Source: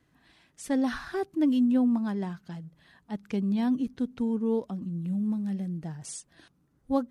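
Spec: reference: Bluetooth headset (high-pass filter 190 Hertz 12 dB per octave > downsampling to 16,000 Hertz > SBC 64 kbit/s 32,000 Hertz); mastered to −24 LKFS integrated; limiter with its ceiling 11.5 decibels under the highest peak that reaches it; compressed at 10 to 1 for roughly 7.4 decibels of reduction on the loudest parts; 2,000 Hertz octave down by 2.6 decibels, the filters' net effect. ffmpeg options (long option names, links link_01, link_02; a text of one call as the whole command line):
ffmpeg -i in.wav -af "equalizer=frequency=2000:width_type=o:gain=-3.5,acompressor=threshold=-28dB:ratio=10,alimiter=level_in=8.5dB:limit=-24dB:level=0:latency=1,volume=-8.5dB,highpass=190,aresample=16000,aresample=44100,volume=17.5dB" -ar 32000 -c:a sbc -b:a 64k out.sbc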